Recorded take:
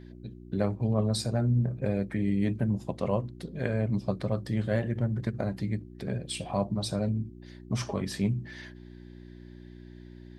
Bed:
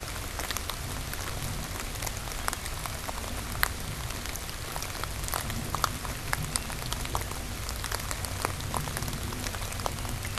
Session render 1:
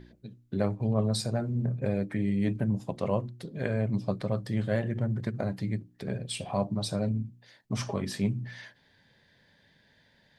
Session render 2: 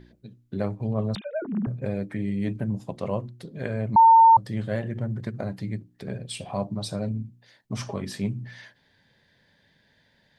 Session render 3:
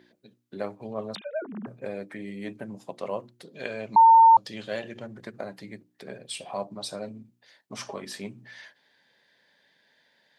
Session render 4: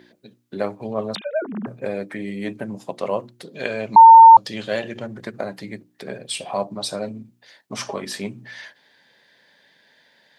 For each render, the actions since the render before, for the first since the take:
hum removal 60 Hz, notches 6
0:01.15–0:01.67: three sine waves on the formant tracks; 0:03.96–0:04.37: beep over 906 Hz −10 dBFS
0:03.54–0:05.07: gain on a spectral selection 2,300–7,400 Hz +8 dB; Bessel high-pass filter 430 Hz, order 2
level +8 dB

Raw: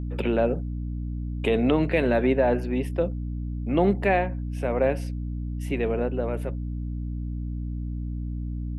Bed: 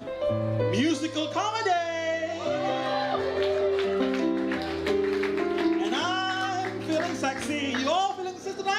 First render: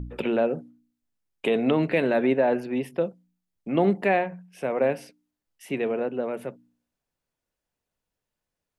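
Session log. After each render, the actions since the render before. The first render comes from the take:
hum removal 60 Hz, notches 5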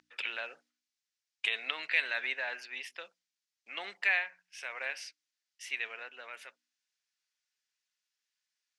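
Chebyshev band-pass filter 1,700–5,700 Hz, order 2
high-shelf EQ 4,100 Hz +11 dB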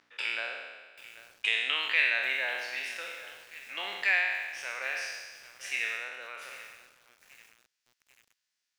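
peak hold with a decay on every bin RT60 1.37 s
feedback echo at a low word length 789 ms, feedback 55%, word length 7 bits, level −15 dB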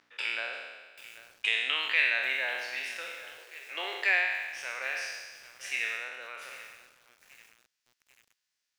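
0:00.53–0:01.18: bass and treble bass 0 dB, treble +4 dB
0:03.38–0:04.26: low shelf with overshoot 270 Hz −12.5 dB, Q 3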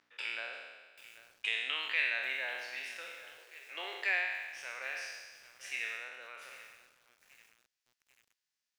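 level −6 dB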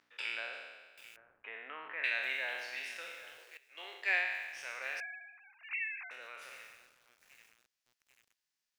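0:01.16–0:02.04: low-pass filter 1,600 Hz 24 dB per octave
0:03.57–0:04.25: multiband upward and downward expander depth 70%
0:05.00–0:06.11: three sine waves on the formant tracks

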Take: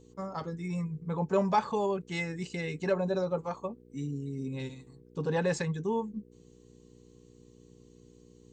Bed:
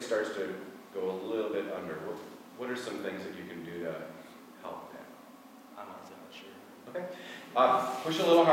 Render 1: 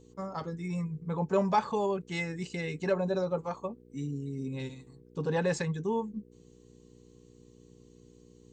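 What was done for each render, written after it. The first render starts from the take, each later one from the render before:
no processing that can be heard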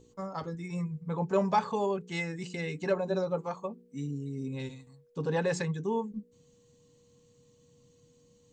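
hum removal 60 Hz, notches 7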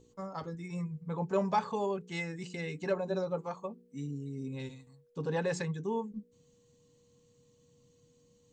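level −3 dB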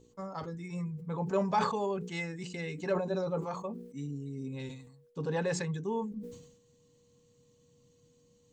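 level that may fall only so fast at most 69 dB per second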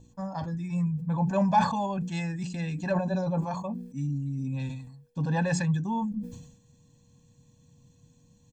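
low-shelf EQ 450 Hz +6 dB
comb filter 1.2 ms, depth 96%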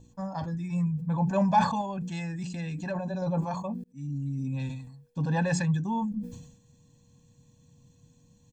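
0:01.81–0:03.22: downward compressor 2 to 1, threshold −32 dBFS
0:03.84–0:04.24: fade in

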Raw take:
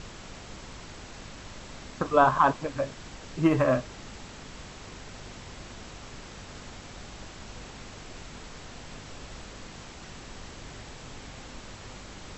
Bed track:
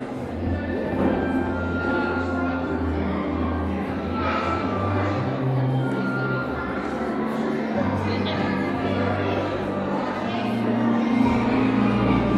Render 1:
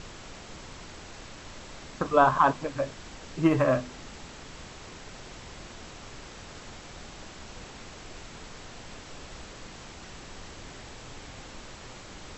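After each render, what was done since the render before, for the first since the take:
hum removal 50 Hz, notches 5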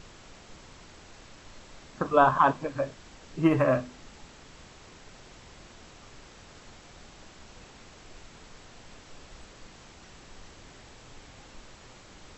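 noise reduction from a noise print 6 dB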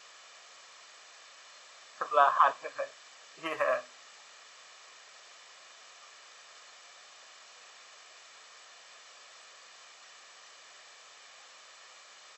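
high-pass filter 930 Hz 12 dB per octave
comb filter 1.7 ms, depth 41%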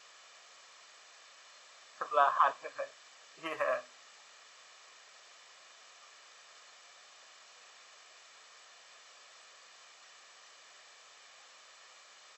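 level −3.5 dB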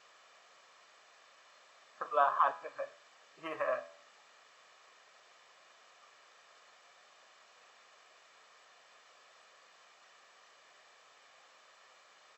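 high-shelf EQ 2,800 Hz −11 dB
hum removal 83.04 Hz, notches 30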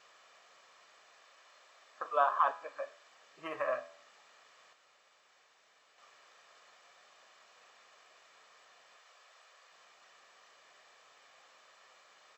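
0:01.21–0:03.10: high-pass filter 250 Hz
0:04.73–0:05.98: fill with room tone
0:08.96–0:09.72: high-pass filter 460 Hz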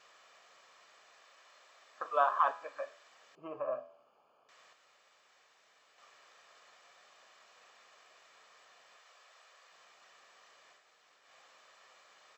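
0:03.35–0:04.49: moving average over 23 samples
0:10.80–0:11.24: fill with room tone, crossfade 0.16 s

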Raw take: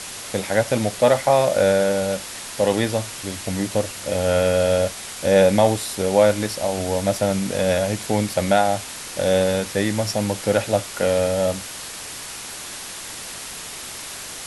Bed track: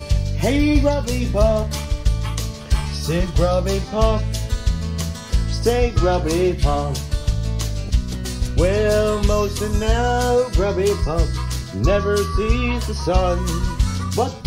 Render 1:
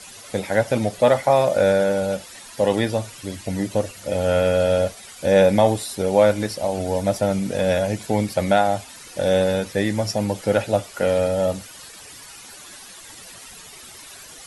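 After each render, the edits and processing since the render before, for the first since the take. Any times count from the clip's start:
broadband denoise 12 dB, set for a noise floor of −34 dBFS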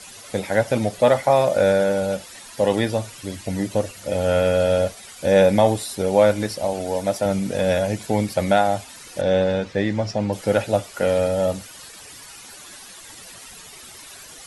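0:06.73–0:07.26: low-shelf EQ 140 Hz −11.5 dB
0:09.21–0:10.33: high-frequency loss of the air 120 metres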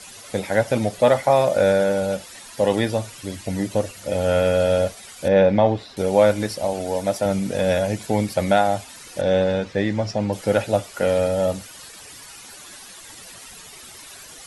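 0:05.28–0:05.97: high-frequency loss of the air 230 metres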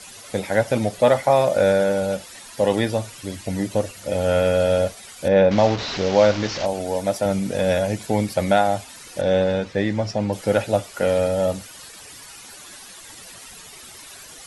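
0:05.51–0:06.66: linear delta modulator 32 kbit/s, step −22 dBFS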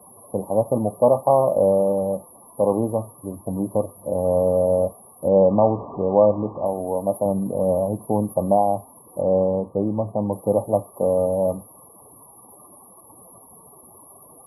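high-pass filter 100 Hz
brick-wall band-stop 1,200–10,000 Hz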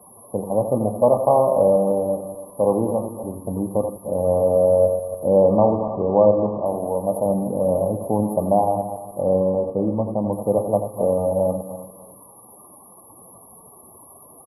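feedback delay that plays each chunk backwards 147 ms, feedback 48%, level −10 dB
single-tap delay 86 ms −9.5 dB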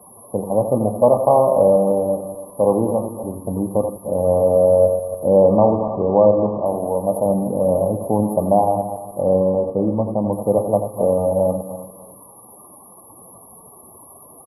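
level +2.5 dB
brickwall limiter −3 dBFS, peak gain reduction 1.5 dB

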